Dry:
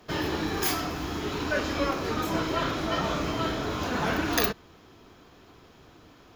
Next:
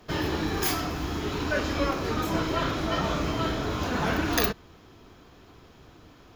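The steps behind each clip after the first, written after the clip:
low-shelf EQ 120 Hz +6 dB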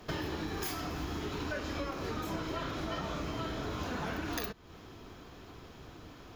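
downward compressor 6 to 1, threshold −36 dBFS, peak gain reduction 15.5 dB
level +1.5 dB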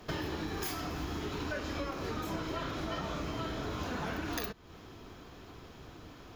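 no processing that can be heard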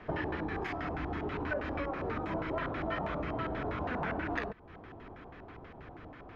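auto-filter low-pass square 6.2 Hz 780–2,000 Hz

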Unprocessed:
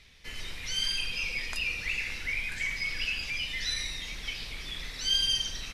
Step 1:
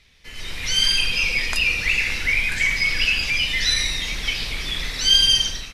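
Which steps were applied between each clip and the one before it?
automatic gain control gain up to 12 dB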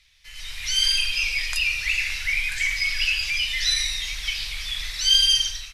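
guitar amp tone stack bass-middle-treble 10-0-10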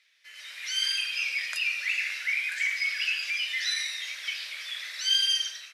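Chebyshev high-pass with heavy ripple 420 Hz, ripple 9 dB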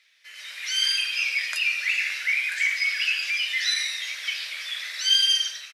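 double-tracking delay 13 ms −14 dB
level +4 dB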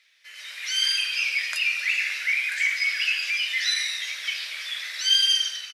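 echo with shifted repeats 235 ms, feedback 33%, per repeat −79 Hz, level −15.5 dB

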